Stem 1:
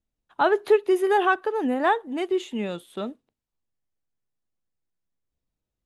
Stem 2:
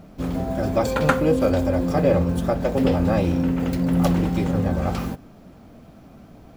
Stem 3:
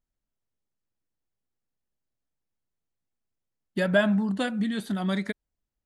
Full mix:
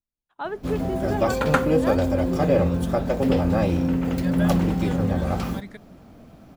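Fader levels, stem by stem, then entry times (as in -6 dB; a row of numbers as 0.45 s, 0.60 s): -10.5 dB, -1.0 dB, -10.0 dB; 0.00 s, 0.45 s, 0.45 s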